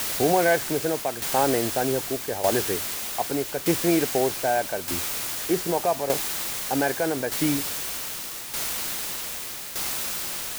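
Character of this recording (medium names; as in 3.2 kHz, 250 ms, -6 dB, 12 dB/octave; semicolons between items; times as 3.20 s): a quantiser's noise floor 6-bit, dither triangular; tremolo saw down 0.82 Hz, depth 65%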